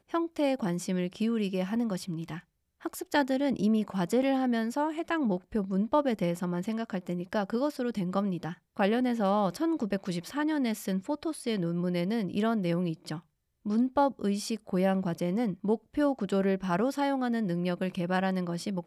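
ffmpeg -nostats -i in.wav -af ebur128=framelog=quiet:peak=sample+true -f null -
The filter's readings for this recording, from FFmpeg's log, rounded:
Integrated loudness:
  I:         -29.9 LUFS
  Threshold: -40.1 LUFS
Loudness range:
  LRA:         2.0 LU
  Threshold: -50.1 LUFS
  LRA low:   -31.1 LUFS
  LRA high:  -29.0 LUFS
Sample peak:
  Peak:      -13.1 dBFS
True peak:
  Peak:      -13.1 dBFS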